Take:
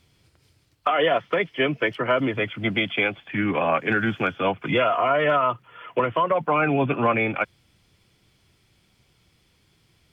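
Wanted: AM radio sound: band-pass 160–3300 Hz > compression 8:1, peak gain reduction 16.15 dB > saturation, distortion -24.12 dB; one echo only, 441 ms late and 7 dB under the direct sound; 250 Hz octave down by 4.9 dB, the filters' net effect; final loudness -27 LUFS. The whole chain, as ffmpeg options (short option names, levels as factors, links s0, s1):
-af "highpass=160,lowpass=3300,equalizer=f=250:t=o:g=-5.5,aecho=1:1:441:0.447,acompressor=threshold=0.0224:ratio=8,asoftclip=threshold=0.0596,volume=3.16"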